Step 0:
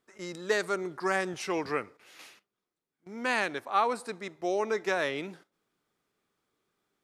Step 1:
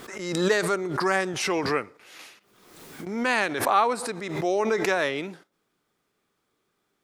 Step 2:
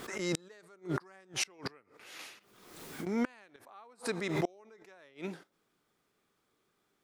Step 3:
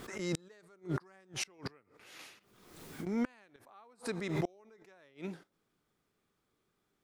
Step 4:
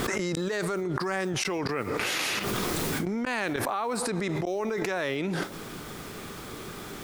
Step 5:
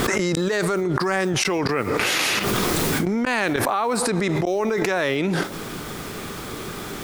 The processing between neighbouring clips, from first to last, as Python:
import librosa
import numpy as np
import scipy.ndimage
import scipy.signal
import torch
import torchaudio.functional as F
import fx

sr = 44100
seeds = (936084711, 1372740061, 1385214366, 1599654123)

y1 = fx.pre_swell(x, sr, db_per_s=51.0)
y1 = y1 * librosa.db_to_amplitude(4.5)
y2 = fx.gate_flip(y1, sr, shuts_db=-17.0, range_db=-31)
y2 = y2 * librosa.db_to_amplitude(-2.0)
y3 = fx.low_shelf(y2, sr, hz=180.0, db=9.5)
y3 = y3 * librosa.db_to_amplitude(-4.5)
y4 = fx.env_flatten(y3, sr, amount_pct=100)
y5 = fx.end_taper(y4, sr, db_per_s=210.0)
y5 = y5 * librosa.db_to_amplitude(7.5)